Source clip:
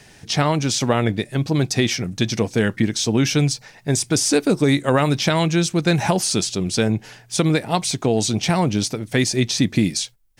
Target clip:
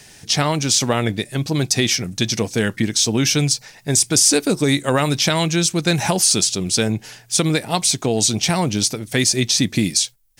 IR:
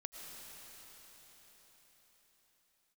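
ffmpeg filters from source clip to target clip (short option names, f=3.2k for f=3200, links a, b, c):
-af "highshelf=f=3.7k:g=10.5,volume=-1dB"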